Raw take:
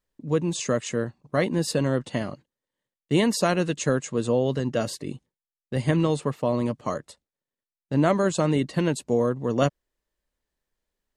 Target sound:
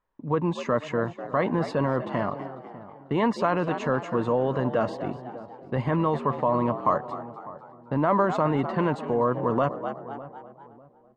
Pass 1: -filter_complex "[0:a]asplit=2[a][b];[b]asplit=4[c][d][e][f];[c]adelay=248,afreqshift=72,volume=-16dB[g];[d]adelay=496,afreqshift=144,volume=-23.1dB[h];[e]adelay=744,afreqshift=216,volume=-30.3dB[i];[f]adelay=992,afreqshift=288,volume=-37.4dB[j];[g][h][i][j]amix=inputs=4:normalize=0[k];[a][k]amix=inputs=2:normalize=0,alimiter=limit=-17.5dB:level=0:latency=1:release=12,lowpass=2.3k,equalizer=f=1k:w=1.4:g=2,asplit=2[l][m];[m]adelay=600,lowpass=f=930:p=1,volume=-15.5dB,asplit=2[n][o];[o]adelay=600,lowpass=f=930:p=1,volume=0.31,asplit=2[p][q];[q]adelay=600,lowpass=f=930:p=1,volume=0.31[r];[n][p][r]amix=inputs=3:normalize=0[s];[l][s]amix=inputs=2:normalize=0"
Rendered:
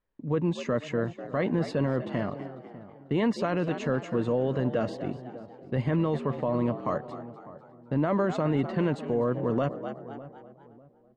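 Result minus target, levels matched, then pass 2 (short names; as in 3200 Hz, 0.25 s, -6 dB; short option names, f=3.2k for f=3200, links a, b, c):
1000 Hz band -6.5 dB
-filter_complex "[0:a]asplit=2[a][b];[b]asplit=4[c][d][e][f];[c]adelay=248,afreqshift=72,volume=-16dB[g];[d]adelay=496,afreqshift=144,volume=-23.1dB[h];[e]adelay=744,afreqshift=216,volume=-30.3dB[i];[f]adelay=992,afreqshift=288,volume=-37.4dB[j];[g][h][i][j]amix=inputs=4:normalize=0[k];[a][k]amix=inputs=2:normalize=0,alimiter=limit=-17.5dB:level=0:latency=1:release=12,lowpass=2.3k,equalizer=f=1k:w=1.4:g=13.5,asplit=2[l][m];[m]adelay=600,lowpass=f=930:p=1,volume=-15.5dB,asplit=2[n][o];[o]adelay=600,lowpass=f=930:p=1,volume=0.31,asplit=2[p][q];[q]adelay=600,lowpass=f=930:p=1,volume=0.31[r];[n][p][r]amix=inputs=3:normalize=0[s];[l][s]amix=inputs=2:normalize=0"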